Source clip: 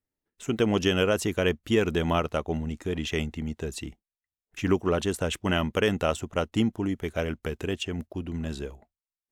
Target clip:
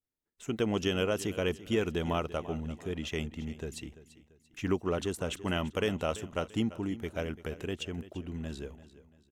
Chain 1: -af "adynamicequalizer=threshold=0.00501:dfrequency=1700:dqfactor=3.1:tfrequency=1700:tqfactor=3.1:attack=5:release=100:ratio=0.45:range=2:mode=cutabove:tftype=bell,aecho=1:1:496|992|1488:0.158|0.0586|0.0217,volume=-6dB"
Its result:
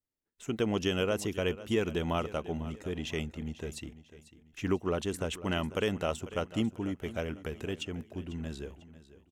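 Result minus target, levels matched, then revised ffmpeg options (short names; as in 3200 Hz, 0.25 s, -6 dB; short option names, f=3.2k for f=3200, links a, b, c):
echo 0.156 s late
-af "adynamicequalizer=threshold=0.00501:dfrequency=1700:dqfactor=3.1:tfrequency=1700:tqfactor=3.1:attack=5:release=100:ratio=0.45:range=2:mode=cutabove:tftype=bell,aecho=1:1:340|680|1020:0.158|0.0586|0.0217,volume=-6dB"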